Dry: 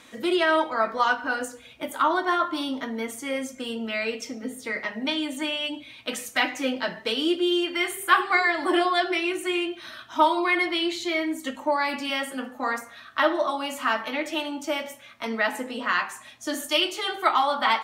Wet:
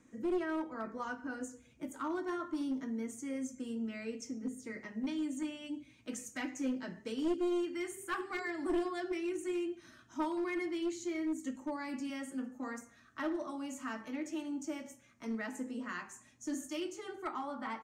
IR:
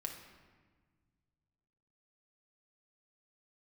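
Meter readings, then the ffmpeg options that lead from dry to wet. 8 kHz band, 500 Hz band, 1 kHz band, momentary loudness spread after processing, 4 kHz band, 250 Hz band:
-9.5 dB, -12.0 dB, -19.0 dB, 9 LU, -23.5 dB, -6.5 dB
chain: -filter_complex "[0:a]firequalizer=gain_entry='entry(290,0);entry(630,-14);entry(1800,-14);entry(3600,-27);entry(6600,-8);entry(11000,-22)':delay=0.05:min_phase=1,acrossover=split=420|2800[s0][s1][s2];[s2]dynaudnorm=f=150:g=17:m=2.51[s3];[s0][s1][s3]amix=inputs=3:normalize=0,aeval=exprs='clip(val(0),-1,0.0473)':c=same,volume=0.562"

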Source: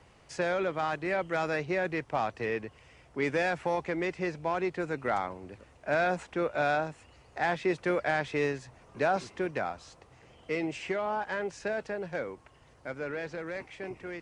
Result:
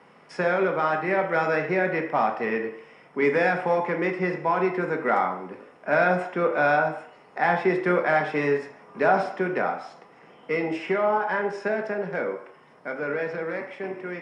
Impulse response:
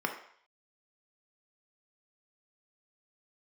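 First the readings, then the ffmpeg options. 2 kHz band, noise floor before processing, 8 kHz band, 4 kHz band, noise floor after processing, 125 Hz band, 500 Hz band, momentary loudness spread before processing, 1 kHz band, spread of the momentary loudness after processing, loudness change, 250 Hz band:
+7.0 dB, -59 dBFS, no reading, +0.5 dB, -53 dBFS, +5.5 dB, +7.0 dB, 13 LU, +8.0 dB, 13 LU, +7.0 dB, +6.0 dB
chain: -filter_complex "[1:a]atrim=start_sample=2205[s0];[0:a][s0]afir=irnorm=-1:irlink=0"

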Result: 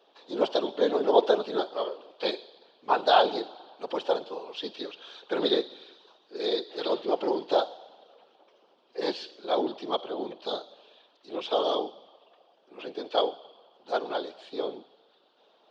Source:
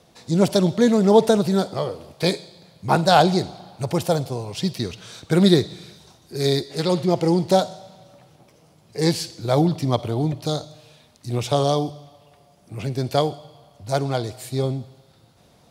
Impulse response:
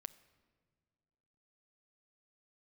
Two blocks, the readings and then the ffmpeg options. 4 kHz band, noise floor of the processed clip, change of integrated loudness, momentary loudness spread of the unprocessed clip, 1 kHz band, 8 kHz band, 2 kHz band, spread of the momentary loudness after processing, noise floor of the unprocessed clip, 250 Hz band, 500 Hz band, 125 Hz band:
-5.0 dB, -65 dBFS, -7.5 dB, 16 LU, -5.0 dB, under -20 dB, -6.5 dB, 17 LU, -55 dBFS, -14.5 dB, -5.5 dB, under -30 dB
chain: -af "afftfilt=real='hypot(re,im)*cos(2*PI*random(0))':imag='hypot(re,im)*sin(2*PI*random(1))':win_size=512:overlap=0.75,highpass=f=370:w=0.5412,highpass=f=370:w=1.3066,equalizer=f=640:t=q:w=4:g=-3,equalizer=f=2100:t=q:w=4:g=-10,equalizer=f=3200:t=q:w=4:g=5,lowpass=f=3800:w=0.5412,lowpass=f=3800:w=1.3066,volume=1.33"

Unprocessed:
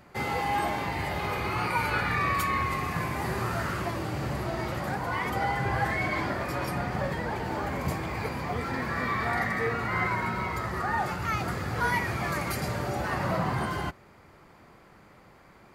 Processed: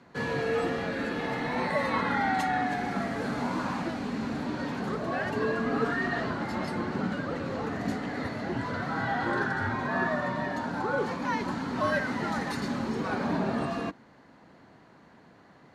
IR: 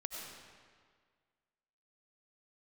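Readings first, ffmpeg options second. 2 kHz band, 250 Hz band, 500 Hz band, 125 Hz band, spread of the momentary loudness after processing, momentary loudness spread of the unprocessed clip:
-1.5 dB, +4.0 dB, +2.0 dB, -5.0 dB, 5 LU, 5 LU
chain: -af "afreqshift=-360,highpass=110,lowpass=5900"

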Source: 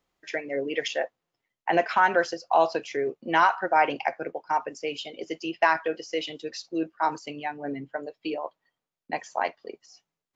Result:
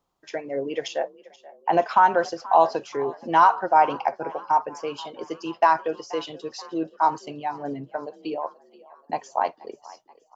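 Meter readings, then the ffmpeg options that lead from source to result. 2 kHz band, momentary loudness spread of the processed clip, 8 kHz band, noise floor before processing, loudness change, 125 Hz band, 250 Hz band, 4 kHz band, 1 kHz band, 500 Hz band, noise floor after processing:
-4.0 dB, 16 LU, no reading, under -85 dBFS, +3.5 dB, +3.0 dB, +1.0 dB, -3.0 dB, +5.0 dB, +2.0 dB, -60 dBFS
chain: -filter_complex "[0:a]equalizer=f=125:t=o:w=1:g=4,equalizer=f=1000:t=o:w=1:g=8,equalizer=f=2000:t=o:w=1:g=-10,asplit=5[s0][s1][s2][s3][s4];[s1]adelay=480,afreqshift=46,volume=0.0944[s5];[s2]adelay=960,afreqshift=92,volume=0.0501[s6];[s3]adelay=1440,afreqshift=138,volume=0.0266[s7];[s4]adelay=1920,afreqshift=184,volume=0.0141[s8];[s0][s5][s6][s7][s8]amix=inputs=5:normalize=0"

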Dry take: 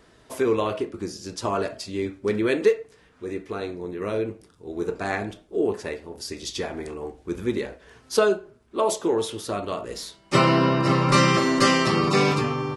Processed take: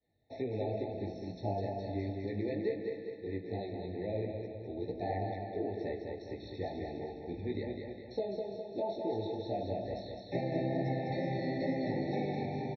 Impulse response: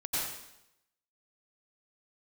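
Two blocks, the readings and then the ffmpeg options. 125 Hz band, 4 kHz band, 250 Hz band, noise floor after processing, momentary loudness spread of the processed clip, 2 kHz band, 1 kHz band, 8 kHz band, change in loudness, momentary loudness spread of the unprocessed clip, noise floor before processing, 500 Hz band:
-10.5 dB, -22.0 dB, -11.5 dB, -48 dBFS, 7 LU, -20.0 dB, -15.0 dB, under -35 dB, -13.5 dB, 16 LU, -57 dBFS, -11.5 dB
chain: -filter_complex "[0:a]agate=range=0.0224:threshold=0.00631:ratio=3:detection=peak,aresample=11025,aresample=44100,asplit=2[s0][s1];[1:a]atrim=start_sample=2205,asetrate=25137,aresample=44100[s2];[s1][s2]afir=irnorm=-1:irlink=0,volume=0.0562[s3];[s0][s3]amix=inputs=2:normalize=0,acrossover=split=240|1300[s4][s5][s6];[s4]acompressor=threshold=0.0126:ratio=4[s7];[s5]acompressor=threshold=0.0562:ratio=4[s8];[s6]acompressor=threshold=0.00794:ratio=4[s9];[s7][s8][s9]amix=inputs=3:normalize=0,flanger=delay=15.5:depth=6.1:speed=2.2,equalizer=f=100:t=o:w=0.67:g=11,equalizer=f=400:t=o:w=0.67:g=-6,equalizer=f=2500:t=o:w=0.67:g=-10,aecho=1:1:205|410|615|820|1025|1230:0.562|0.281|0.141|0.0703|0.0351|0.0176,acrossover=split=4300[s10][s11];[s11]acompressor=threshold=0.00126:ratio=4:attack=1:release=60[s12];[s10][s12]amix=inputs=2:normalize=0,lowshelf=f=210:g=-7,bandreject=f=3300:w=12,afftfilt=real='re*eq(mod(floor(b*sr/1024/880),2),0)':imag='im*eq(mod(floor(b*sr/1024/880),2),0)':win_size=1024:overlap=0.75,volume=0.891"

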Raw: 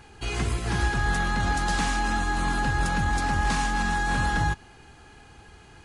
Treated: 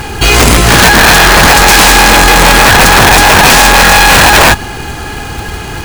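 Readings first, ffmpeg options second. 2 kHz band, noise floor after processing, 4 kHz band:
+23.5 dB, -21 dBFS, +29.0 dB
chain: -af "aeval=exprs='(mod(9.44*val(0)+1,2)-1)/9.44':c=same,acrusher=bits=3:mode=log:mix=0:aa=0.000001,apsyclip=37.6,volume=0.841"

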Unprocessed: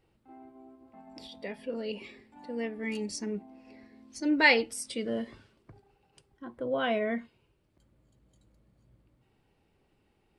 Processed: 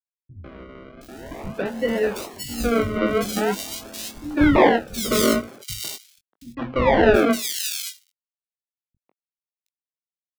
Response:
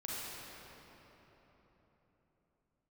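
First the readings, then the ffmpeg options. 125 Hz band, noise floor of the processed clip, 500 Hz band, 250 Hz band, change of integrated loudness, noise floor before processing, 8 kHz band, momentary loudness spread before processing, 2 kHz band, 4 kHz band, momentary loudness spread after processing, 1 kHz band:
+19.0 dB, under -85 dBFS, +13.0 dB, +11.5 dB, +9.0 dB, -72 dBFS, +14.5 dB, 25 LU, +4.0 dB, +8.5 dB, 18 LU, +12.5 dB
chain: -filter_complex "[0:a]aemphasis=mode=reproduction:type=75kf,bandreject=f=87.81:t=h:w=4,bandreject=f=175.62:t=h:w=4,bandreject=f=263.43:t=h:w=4,bandreject=f=351.24:t=h:w=4,bandreject=f=439.05:t=h:w=4,bandreject=f=526.86:t=h:w=4,bandreject=f=614.67:t=h:w=4,bandreject=f=702.48:t=h:w=4,bandreject=f=790.29:t=h:w=4,bandreject=f=878.1:t=h:w=4,bandreject=f=965.91:t=h:w=4,bandreject=f=1053.72:t=h:w=4,agate=range=0.224:threshold=0.00126:ratio=16:detection=peak,equalizer=f=350:w=0.39:g=-4.5,dynaudnorm=f=120:g=3:m=5.62,acrusher=bits=7:mix=0:aa=0.000001,aresample=11025,asoftclip=type=hard:threshold=0.224,aresample=44100,acrusher=samples=35:mix=1:aa=0.000001:lfo=1:lforange=35:lforate=0.44,asplit=2[s0][s1];[s1]adelay=21,volume=0.398[s2];[s0][s2]amix=inputs=2:normalize=0,acrossover=split=190|3000[s3][s4][s5];[s4]adelay=150[s6];[s5]adelay=720[s7];[s3][s6][s7]amix=inputs=3:normalize=0,volume=1.5"

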